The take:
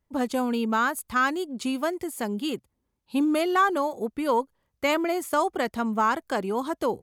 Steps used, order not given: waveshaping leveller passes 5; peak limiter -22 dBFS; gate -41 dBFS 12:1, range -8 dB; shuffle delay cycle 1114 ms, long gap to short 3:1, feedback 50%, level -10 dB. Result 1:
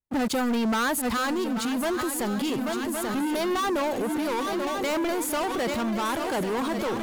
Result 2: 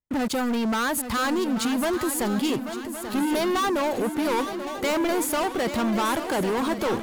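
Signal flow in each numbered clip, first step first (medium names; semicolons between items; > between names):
gate > waveshaping leveller > shuffle delay > peak limiter; waveshaping leveller > peak limiter > shuffle delay > gate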